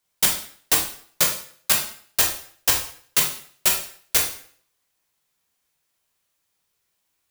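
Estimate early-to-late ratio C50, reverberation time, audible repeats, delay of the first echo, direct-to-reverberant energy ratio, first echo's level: 6.5 dB, 0.55 s, no echo audible, no echo audible, −0.5 dB, no echo audible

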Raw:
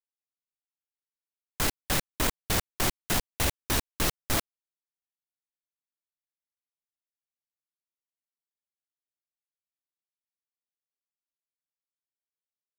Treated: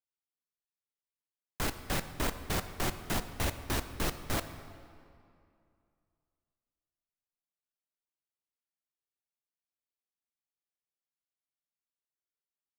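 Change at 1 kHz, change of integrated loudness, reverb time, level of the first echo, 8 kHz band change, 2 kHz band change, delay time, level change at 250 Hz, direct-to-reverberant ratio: −4.0 dB, −6.0 dB, 2.5 s, no echo audible, −8.5 dB, −5.0 dB, no echo audible, −3.0 dB, 9.5 dB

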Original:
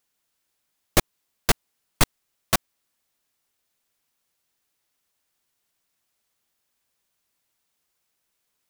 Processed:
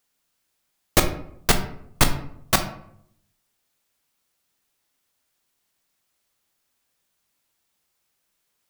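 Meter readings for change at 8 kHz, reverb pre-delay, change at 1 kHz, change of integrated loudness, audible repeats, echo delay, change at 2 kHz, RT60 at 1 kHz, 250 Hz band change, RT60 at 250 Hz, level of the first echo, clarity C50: +2.0 dB, 14 ms, +2.5 dB, +2.0 dB, no echo audible, no echo audible, +2.0 dB, 0.65 s, +3.0 dB, 0.80 s, no echo audible, 10.0 dB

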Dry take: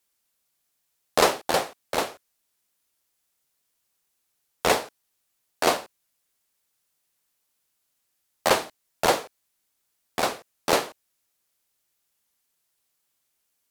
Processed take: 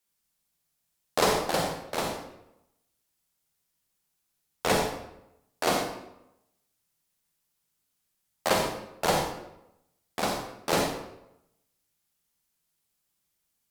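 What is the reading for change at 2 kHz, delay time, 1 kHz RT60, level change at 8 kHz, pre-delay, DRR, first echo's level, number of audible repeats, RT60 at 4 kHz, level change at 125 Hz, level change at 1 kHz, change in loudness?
−3.5 dB, no echo audible, 0.85 s, −3.0 dB, 38 ms, 2.0 dB, no echo audible, no echo audible, 0.60 s, +4.5 dB, −3.0 dB, −3.5 dB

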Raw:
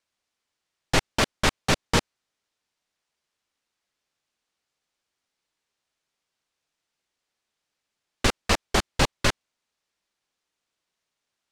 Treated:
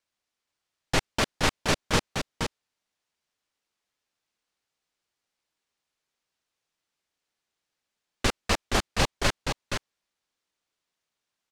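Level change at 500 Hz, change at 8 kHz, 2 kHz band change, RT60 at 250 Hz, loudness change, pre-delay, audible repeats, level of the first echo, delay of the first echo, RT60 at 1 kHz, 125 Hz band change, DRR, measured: −2.0 dB, −2.0 dB, −2.0 dB, no reverb audible, −3.5 dB, no reverb audible, 1, −5.5 dB, 472 ms, no reverb audible, −2.0 dB, no reverb audible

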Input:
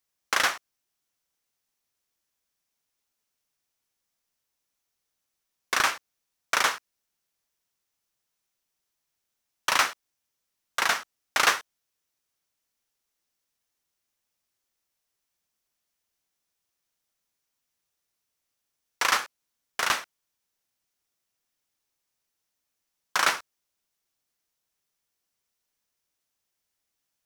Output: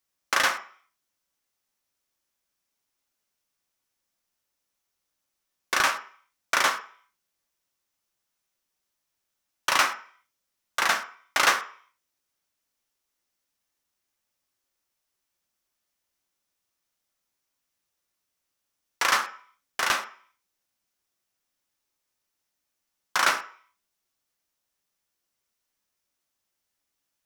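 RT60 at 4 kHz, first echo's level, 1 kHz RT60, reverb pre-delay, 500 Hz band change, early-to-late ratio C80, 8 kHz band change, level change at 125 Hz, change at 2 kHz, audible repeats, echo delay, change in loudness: 0.55 s, no echo audible, 0.50 s, 3 ms, +1.5 dB, 16.5 dB, 0.0 dB, can't be measured, +1.5 dB, no echo audible, no echo audible, +1.0 dB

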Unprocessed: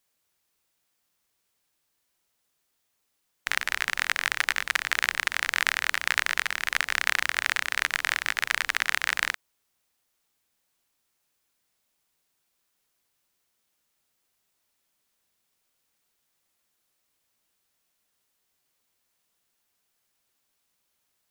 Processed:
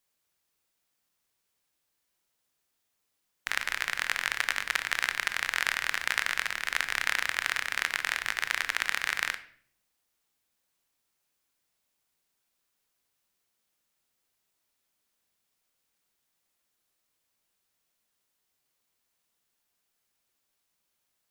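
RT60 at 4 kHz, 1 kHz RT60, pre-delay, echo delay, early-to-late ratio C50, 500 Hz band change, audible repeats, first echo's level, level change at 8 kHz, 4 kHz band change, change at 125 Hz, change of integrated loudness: 0.45 s, 0.50 s, 19 ms, no echo audible, 14.0 dB, −3.0 dB, no echo audible, no echo audible, −3.5 dB, −3.0 dB, can't be measured, −3.0 dB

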